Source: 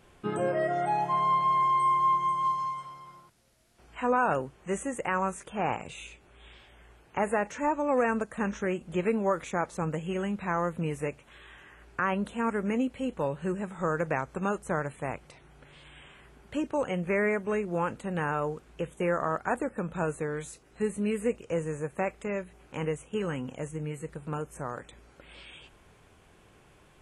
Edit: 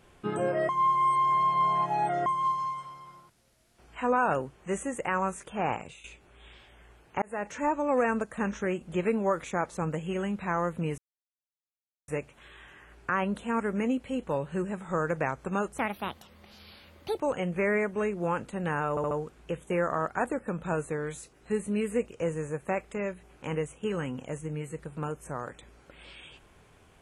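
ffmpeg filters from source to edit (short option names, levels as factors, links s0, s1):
-filter_complex "[0:a]asplit=11[s0][s1][s2][s3][s4][s5][s6][s7][s8][s9][s10];[s0]atrim=end=0.692[s11];[s1]atrim=start=0.688:end=2.262,asetpts=PTS-STARTPTS,areverse[s12];[s2]atrim=start=2.258:end=6.04,asetpts=PTS-STARTPTS,afade=t=out:st=3.522:d=0.26:silence=0.223872[s13];[s3]atrim=start=6.04:end=7.22,asetpts=PTS-STARTPTS,afade=t=in:d=0.004:c=hsin:silence=0.223872,afade=t=out:st=1.176:d=0.004:c=hsin[s14];[s4]atrim=start=7.22:end=10.98,asetpts=PTS-STARTPTS,afade=t=in:d=0.32,afade=t=out:st=3.756:d=0.004:c=hsin,apad=pad_dur=1.1[s15];[s5]atrim=start=10.98:end=14.684,asetpts=PTS-STARTPTS,afade=t=in:d=0.004:c=hsin[s16];[s6]atrim=start=14.68:end=16.71,asetpts=PTS-STARTPTS,asetrate=63063,aresample=44100,atrim=end_sample=62603,asetpts=PTS-STARTPTS[s17];[s7]atrim=start=16.706:end=18.482[s18];[s8]atrim=start=18.408:end=18.482[s19];[s9]atrim=start=18.408:end=18.482[s20];[s10]atrim=start=18.408[s21];[s11][s12]acrossfade=d=0.004:c1=hsin:c2=hsin[s22];[s13][s14][s15][s16]concat=n=4:v=0:a=1[s23];[s22][s23]acrossfade=d=0.004:c1=hsin:c2=hsin[s24];[s24][s17]acrossfade=d=0.004:c1=hsin:c2=hsin[s25];[s25][s18]acrossfade=d=0.004:c1=hsin:c2=hsin[s26];[s26][s19]acrossfade=d=0.004:c1=hsin:c2=hsin[s27];[s27][s20]acrossfade=d=0.004:c1=hsin:c2=hsin[s28];[s28][s21]acrossfade=d=0.004:c1=hsin:c2=hsin"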